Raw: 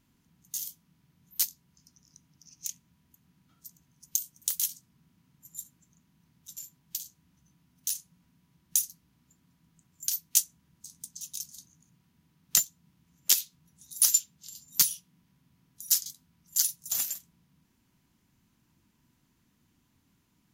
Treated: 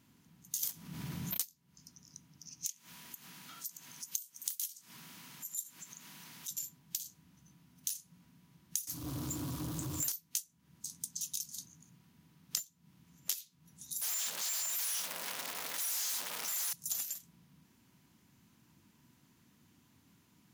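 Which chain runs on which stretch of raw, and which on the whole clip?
0:00.63–0:01.42: leveller curve on the samples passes 3 + envelope flattener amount 50%
0:02.67–0:06.51: high-pass filter 1,400 Hz 6 dB per octave + upward compression, threshold −38 dBFS
0:08.87–0:10.12: drawn EQ curve 140 Hz 0 dB, 200 Hz −20 dB, 300 Hz +7 dB, 620 Hz −22 dB, 1,100 Hz 0 dB, 1,800 Hz −18 dB, 3,500 Hz −6 dB, 9,800 Hz −2 dB + power curve on the samples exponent 0.5
0:14.01–0:16.73: sign of each sample alone + downward expander −27 dBFS + high-pass filter 760 Hz
whole clip: high-pass filter 88 Hz; downward compressor 10 to 1, threshold −38 dBFS; level +4 dB

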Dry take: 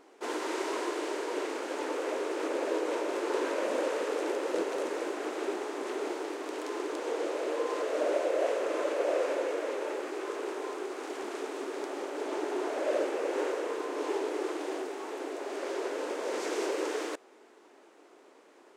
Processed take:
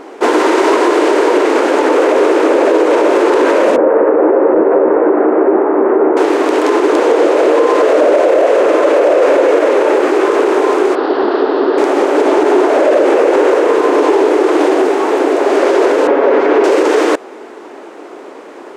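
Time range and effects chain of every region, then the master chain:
0:03.76–0:06.17: Bessel low-pass filter 1,100 Hz, order 6 + double-tracking delay 13 ms −7.5 dB
0:10.95–0:11.78: elliptic low-pass filter 4,600 Hz, stop band 50 dB + parametric band 2,300 Hz −12.5 dB 0.44 octaves
0:16.07–0:16.64: low-pass filter 2,200 Hz + comb filter 7.2 ms, depth 48%
whole clip: high-shelf EQ 2,700 Hz −10 dB; boost into a limiter +27.5 dB; level −1 dB

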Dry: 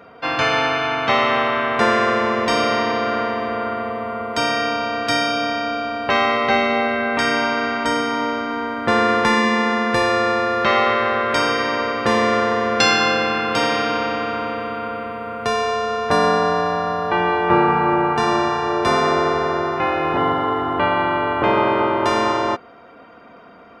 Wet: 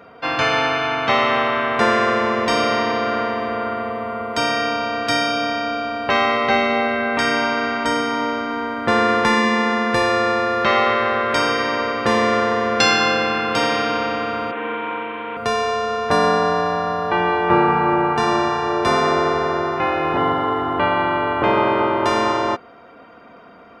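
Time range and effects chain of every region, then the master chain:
0:14.51–0:15.37: variable-slope delta modulation 16 kbit/s + high-pass filter 310 Hz + flutter between parallel walls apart 7.7 metres, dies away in 1.2 s
whole clip: no processing

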